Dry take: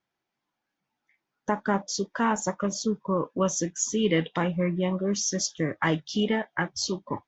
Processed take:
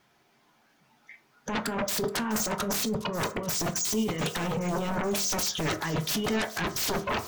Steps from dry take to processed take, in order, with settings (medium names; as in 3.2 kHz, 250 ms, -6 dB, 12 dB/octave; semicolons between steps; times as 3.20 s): 1.76–3.97 s: comb 5.1 ms, depth 33%; compressor with a negative ratio -31 dBFS, ratio -0.5; sine folder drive 17 dB, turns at -17 dBFS; feedback echo behind a high-pass 426 ms, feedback 70%, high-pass 3.7 kHz, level -14.5 dB; reverberation RT60 0.50 s, pre-delay 4 ms, DRR 7.5 dB; trim -8.5 dB